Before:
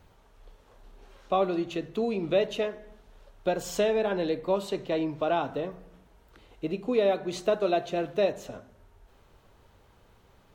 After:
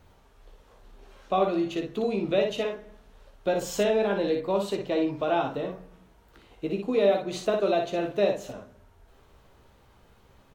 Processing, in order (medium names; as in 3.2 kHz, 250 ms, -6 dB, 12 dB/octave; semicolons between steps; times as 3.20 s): early reflections 15 ms -7.5 dB, 59 ms -5.5 dB